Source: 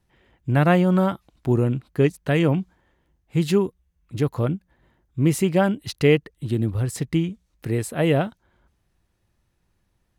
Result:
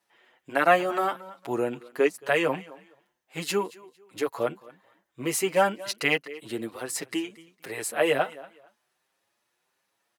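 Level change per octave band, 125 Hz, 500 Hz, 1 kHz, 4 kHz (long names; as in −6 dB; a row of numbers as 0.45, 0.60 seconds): −21.5, −3.5, +2.0, +0.5 decibels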